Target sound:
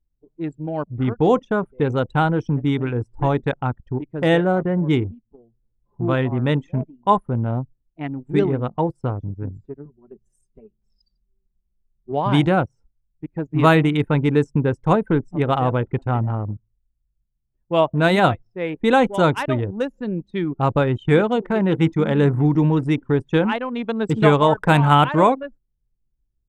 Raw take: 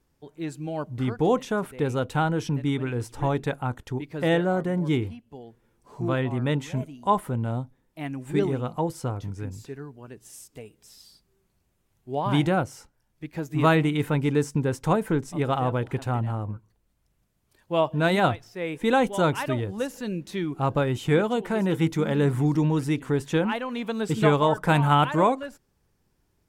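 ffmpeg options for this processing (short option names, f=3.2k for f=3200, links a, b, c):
-filter_complex "[0:a]asettb=1/sr,asplit=3[a][b][c];[a]atrim=end=9.854[d];[b]atrim=start=9.85:end=12.12,asetpts=PTS-STARTPTS,afade=t=in:d=0.004:c=qsin,afade=t=out:st=2.266:d=0.004:c=qsin,aecho=1:1:5.2:0.74,atrim=end_sample=100107[e];[c]atrim=start=12.116[f];[d][e]acrossfade=d=0.004:c1=hsin:c2=qsin[g];[g][f]acrossfade=d=0.004:c1=qsin:c2=hsin,anlmdn=25.1,volume=5.5dB"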